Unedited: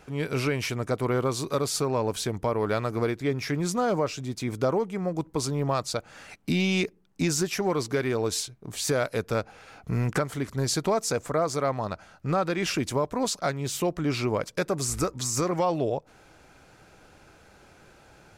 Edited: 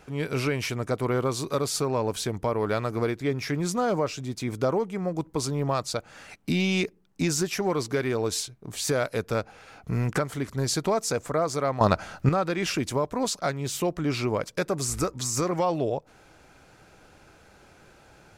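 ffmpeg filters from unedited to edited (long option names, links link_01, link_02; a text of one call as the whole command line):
ffmpeg -i in.wav -filter_complex "[0:a]asplit=3[link_01][link_02][link_03];[link_01]atrim=end=11.812[link_04];[link_02]atrim=start=11.808:end=12.292,asetpts=PTS-STARTPTS,volume=11.5dB[link_05];[link_03]atrim=start=12.288[link_06];[link_04][link_05]acrossfade=duration=0.004:curve1=hsin:curve2=hsin[link_07];[link_07][link_06]acrossfade=duration=0.004:curve1=hsin:curve2=hsin" out.wav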